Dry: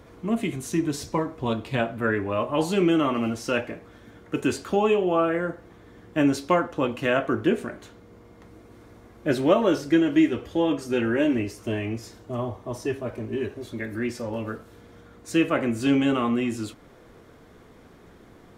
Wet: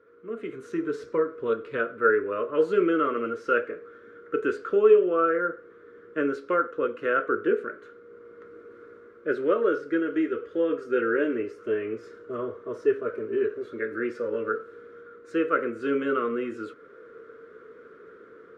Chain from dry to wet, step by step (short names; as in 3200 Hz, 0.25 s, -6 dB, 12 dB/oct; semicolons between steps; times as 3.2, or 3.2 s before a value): AGC gain up to 11.5 dB; double band-pass 790 Hz, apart 1.6 oct